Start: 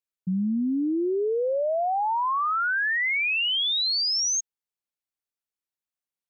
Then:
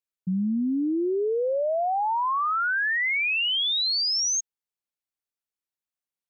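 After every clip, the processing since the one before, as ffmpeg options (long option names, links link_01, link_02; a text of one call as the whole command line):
ffmpeg -i in.wav -af anull out.wav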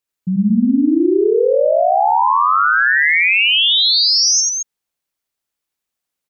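ffmpeg -i in.wav -af "aecho=1:1:87.46|221.6:0.891|0.631,volume=8dB" out.wav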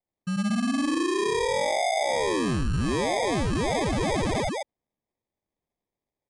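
ffmpeg -i in.wav -af "acrusher=samples=31:mix=1:aa=0.000001,asoftclip=type=tanh:threshold=-12dB,volume=-8.5dB" -ar 22050 -c:a aac -b:a 96k out.aac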